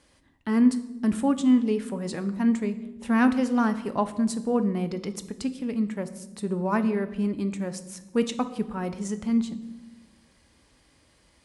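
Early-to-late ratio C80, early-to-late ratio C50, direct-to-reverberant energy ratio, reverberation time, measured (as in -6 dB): 15.5 dB, 13.5 dB, 9.5 dB, 1.0 s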